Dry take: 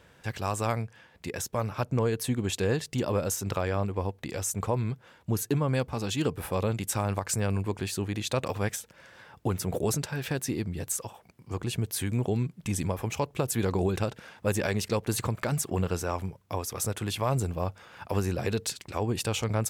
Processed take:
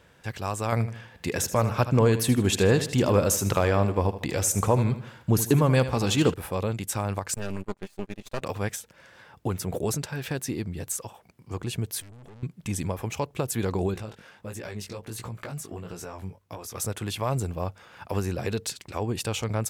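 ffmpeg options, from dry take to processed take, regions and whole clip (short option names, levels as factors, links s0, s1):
-filter_complex "[0:a]asettb=1/sr,asplit=3[s0][s1][s2];[s0]atrim=end=0.724[s3];[s1]atrim=start=0.72:end=6.34,asetpts=PTS-STARTPTS,afade=t=in:d=0.004:c=qsin,afade=t=out:st=5.616:d=0.004:c=qsin,acontrast=62,aecho=1:1:78|156|234|312:0.237|0.0996|0.0418|0.0176,atrim=end_sample=247842[s4];[s2]atrim=start=6.336[s5];[s3][s4]acrossfade=d=0.004:c1=hsin:c2=qsin[s6];[s6][s5]acrossfade=d=0.004:c1=qsin:c2=hsin,asettb=1/sr,asplit=3[s7][s8][s9];[s7]atrim=end=7.344[s10];[s8]atrim=start=7.34:end=8.42,asetpts=PTS-STARTPTS,afade=t=in:d=0.004:c=qsin,afade=t=out:st=1.076:d=0.004:c=qsin,agate=range=0.0794:threshold=0.0282:ratio=16:release=100:detection=peak,aecho=1:1:5:0.49,atrim=end_sample=47628,aeval=exprs='max(val(0),0)':c=same[s11];[s9]atrim=start=8.416[s12];[s10][s11]acrossfade=d=0.004:c1=hsin:c2=qsin[s13];[s13][s12]acrossfade=d=0.004:c1=qsin:c2=hsin,asettb=1/sr,asplit=3[s14][s15][s16];[s14]atrim=end=12.004[s17];[s15]atrim=start=12:end=12.43,asetpts=PTS-STARTPTS,afade=t=in:d=0.004:c=qsin,afade=t=out:st=0.426:d=0.004:c=qsin,acompressor=threshold=0.0316:ratio=4:attack=3.2:release=140:knee=1:detection=peak,aeval=exprs='(tanh(200*val(0)+0.55)-tanh(0.55))/200':c=same[s18];[s16]atrim=start=12.426[s19];[s17][s18]acrossfade=d=0.004:c1=hsin:c2=qsin[s20];[s20][s19]acrossfade=d=0.004:c1=qsin:c2=hsin,asettb=1/sr,asplit=3[s21][s22][s23];[s21]atrim=end=13.944[s24];[s22]atrim=start=13.94:end=16.75,asetpts=PTS-STARTPTS,afade=t=in:d=0.004:c=qsin,afade=t=out:st=2.806:d=0.004:c=qsin,acompressor=threshold=0.0355:ratio=12:attack=3.2:release=140:knee=1:detection=peak,flanger=delay=17:depth=3.6:speed=1.5[s25];[s23]atrim=start=16.746[s26];[s24][s25]acrossfade=d=0.004:c1=hsin:c2=qsin[s27];[s27][s26]acrossfade=d=0.004:c1=qsin:c2=hsin"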